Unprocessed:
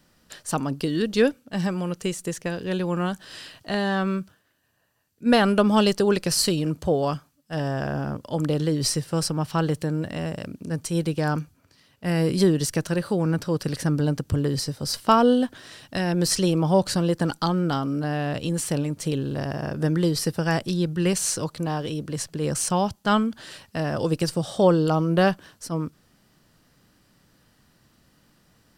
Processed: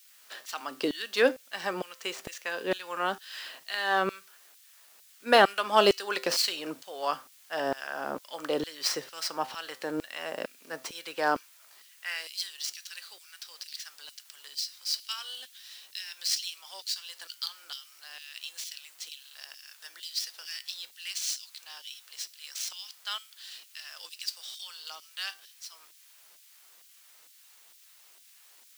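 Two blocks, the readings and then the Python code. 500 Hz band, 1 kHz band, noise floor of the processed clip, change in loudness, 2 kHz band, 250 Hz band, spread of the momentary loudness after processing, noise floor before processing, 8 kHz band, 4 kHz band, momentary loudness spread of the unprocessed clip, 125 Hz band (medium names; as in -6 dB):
-8.0 dB, -4.5 dB, -58 dBFS, -7.5 dB, -1.0 dB, -18.0 dB, 18 LU, -63 dBFS, -7.5 dB, -1.0 dB, 10 LU, -29.0 dB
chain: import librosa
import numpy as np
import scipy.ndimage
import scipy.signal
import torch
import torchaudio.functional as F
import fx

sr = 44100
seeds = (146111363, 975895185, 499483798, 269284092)

y = scipy.ndimage.median_filter(x, 5, mode='constant')
y = fx.high_shelf(y, sr, hz=3600.0, db=-3.5)
y = fx.filter_sweep_highpass(y, sr, from_hz=230.0, to_hz=3800.0, start_s=11.21, end_s=12.36, q=0.98)
y = fx.quant_dither(y, sr, seeds[0], bits=10, dither='triangular')
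y = fx.comb_fb(y, sr, f0_hz=130.0, decay_s=0.31, harmonics='all', damping=0.0, mix_pct=50)
y = fx.filter_lfo_highpass(y, sr, shape='saw_down', hz=2.2, low_hz=340.0, high_hz=3400.0, q=0.72)
y = y * 10.0 ** (7.5 / 20.0)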